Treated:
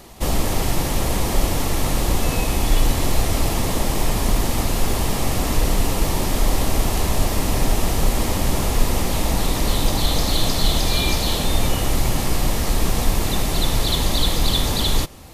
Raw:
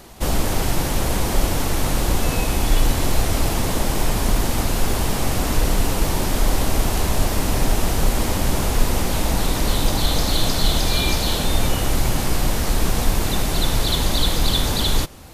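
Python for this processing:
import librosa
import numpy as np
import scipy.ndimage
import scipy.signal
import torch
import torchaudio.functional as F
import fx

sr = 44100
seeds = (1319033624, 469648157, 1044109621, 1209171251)

y = fx.notch(x, sr, hz=1500.0, q=9.8)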